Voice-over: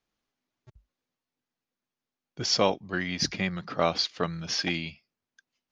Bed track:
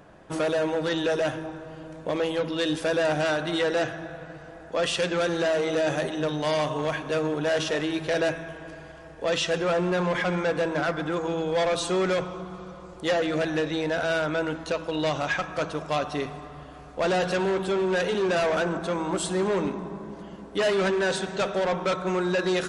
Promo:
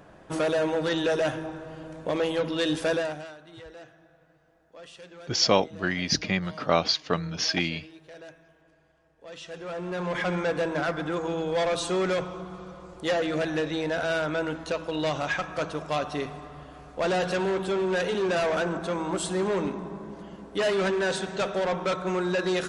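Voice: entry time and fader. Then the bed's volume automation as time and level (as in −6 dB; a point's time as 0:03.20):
2.90 s, +2.5 dB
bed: 0:02.93 0 dB
0:03.35 −21 dB
0:09.14 −21 dB
0:10.25 −1.5 dB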